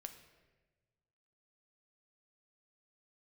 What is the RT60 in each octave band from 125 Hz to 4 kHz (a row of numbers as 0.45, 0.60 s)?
2.0, 1.6, 1.5, 1.1, 1.2, 0.90 s